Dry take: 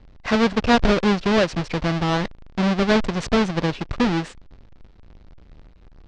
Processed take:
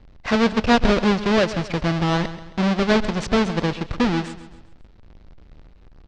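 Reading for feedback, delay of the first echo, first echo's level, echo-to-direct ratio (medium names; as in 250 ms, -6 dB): 42%, 134 ms, -14.0 dB, -13.0 dB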